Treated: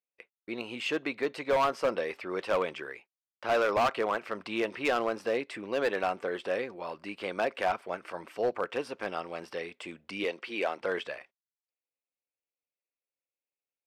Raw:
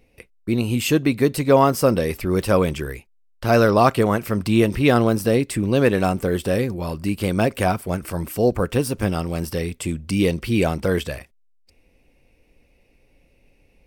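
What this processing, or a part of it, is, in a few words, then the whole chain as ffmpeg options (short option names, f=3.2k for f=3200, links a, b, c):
walkie-talkie: -filter_complex "[0:a]highpass=580,lowpass=3k,asoftclip=type=hard:threshold=-16.5dB,agate=range=-31dB:threshold=-54dB:ratio=16:detection=peak,asettb=1/sr,asplit=3[a][b][c];[a]atrim=end=10.244[d];[b]atrim=start=10.24:end=10.81,asetpts=PTS-STARTPTS,afade=t=in:d=0.004:c=qsin,afade=t=out:st=0.566:d=0.004:c=qsin,highpass=260[e];[c]atrim=start=10.806[f];[d][e]acrossfade=d=0.004:c1=hsin:c2=qsin[g];[g][f]acrossfade=d=0.004:c1=qsin:c2=hsin,volume=-4.5dB"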